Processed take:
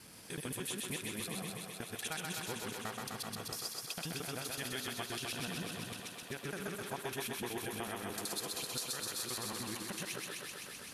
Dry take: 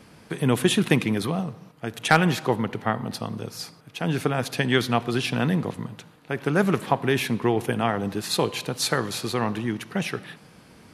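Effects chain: local time reversal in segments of 75 ms; pre-emphasis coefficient 0.8; compressor 5:1, threshold -46 dBFS, peak gain reduction 20.5 dB; on a send: thinning echo 0.128 s, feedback 84%, high-pass 230 Hz, level -3 dB; on the sum: gain +5 dB

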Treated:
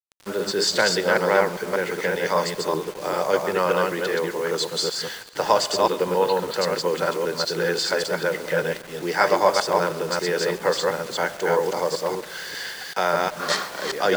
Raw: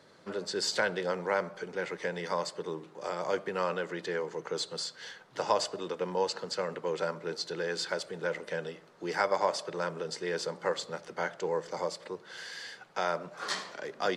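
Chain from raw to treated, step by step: reverse delay 0.196 s, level -1.5 dB; 5.86–6.54 steep low-pass 4200 Hz 96 dB/oct; requantised 8-bit, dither none; thinning echo 0.133 s, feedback 73%, high-pass 420 Hz, level -21 dB; gain +8.5 dB

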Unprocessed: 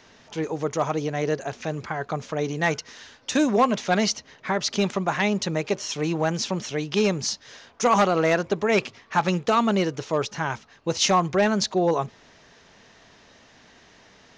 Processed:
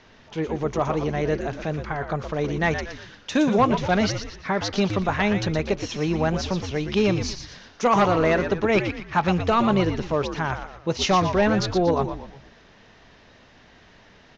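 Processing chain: LPF 4400 Hz 12 dB/oct; low shelf 92 Hz +9.5 dB; on a send: frequency-shifting echo 0.118 s, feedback 41%, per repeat -91 Hz, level -8 dB

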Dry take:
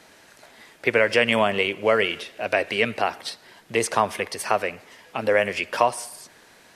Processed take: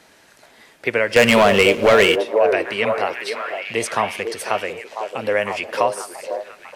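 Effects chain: 1.16–2.16 sample leveller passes 3; on a send: delay with a stepping band-pass 0.498 s, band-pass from 450 Hz, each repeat 0.7 oct, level -3.5 dB

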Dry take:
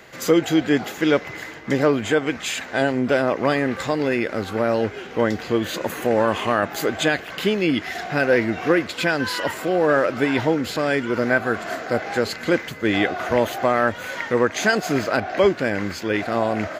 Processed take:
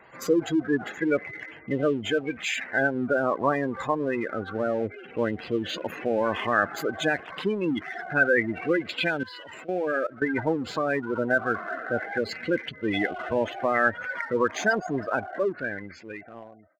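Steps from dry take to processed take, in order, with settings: ending faded out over 2.05 s; spectral gate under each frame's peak -15 dB strong; in parallel at -6 dB: crossover distortion -32.5 dBFS; 9.23–10.22 on the sum: level quantiser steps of 18 dB; LFO bell 0.27 Hz 980–3000 Hz +10 dB; gain -9 dB

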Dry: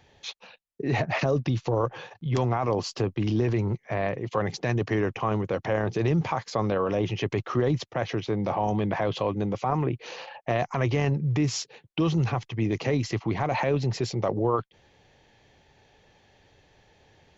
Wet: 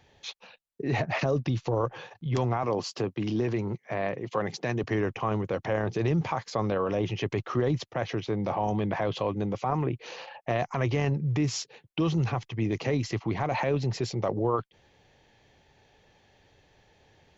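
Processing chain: 2.63–4.84 HPF 130 Hz; gain -2 dB

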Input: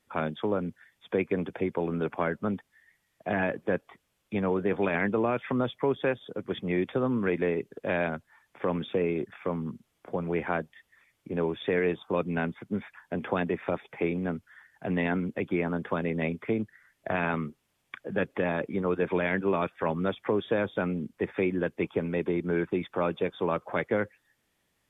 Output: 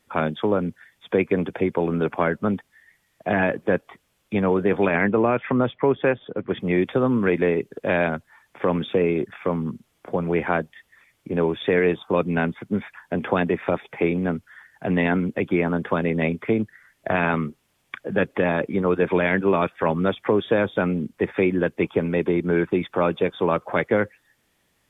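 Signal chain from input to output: 4.87–6.6 LPF 3000 Hz 24 dB/oct; gain +7 dB

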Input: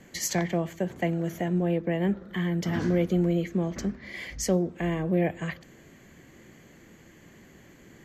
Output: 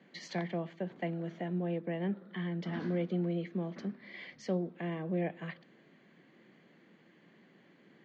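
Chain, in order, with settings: Chebyshev band-pass 170–4100 Hz, order 3; gain -8 dB

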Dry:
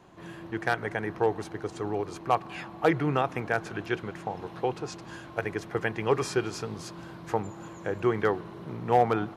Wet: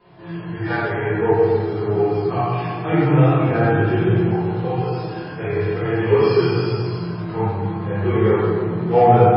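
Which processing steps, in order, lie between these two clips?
3.45–4.15 low shelf 500 Hz +8 dB; 7.43–8.18 gate with hold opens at -41 dBFS; thin delay 99 ms, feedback 36%, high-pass 4700 Hz, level -4.5 dB; 6.03–6.8 dynamic EQ 4700 Hz, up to +4 dB, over -54 dBFS, Q 2.1; chorus 0.45 Hz, delay 16.5 ms, depth 5.3 ms; de-hum 47.19 Hz, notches 37; harmonic-percussive split percussive -16 dB; reverb RT60 2.0 s, pre-delay 4 ms, DRR -14 dB; gain +2.5 dB; MP3 16 kbps 12000 Hz

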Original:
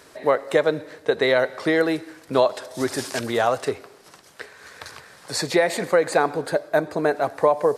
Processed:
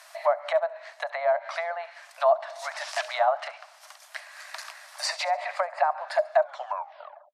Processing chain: tape stop at the end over 1.03 s; treble ducked by the level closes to 860 Hz, closed at -16 dBFS; Chebyshev high-pass 560 Hz, order 8; thin delay 74 ms, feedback 37%, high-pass 5300 Hz, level -12 dB; varispeed +6%; gain +1 dB

